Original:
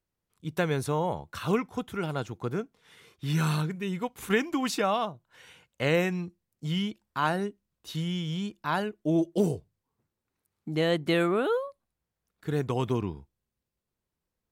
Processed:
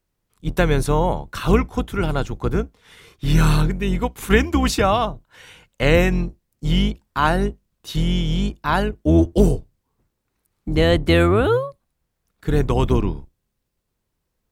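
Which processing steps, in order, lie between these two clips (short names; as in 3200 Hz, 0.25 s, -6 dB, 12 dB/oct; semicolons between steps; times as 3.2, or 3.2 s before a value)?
octaver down 2 oct, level +1 dB; gain +8.5 dB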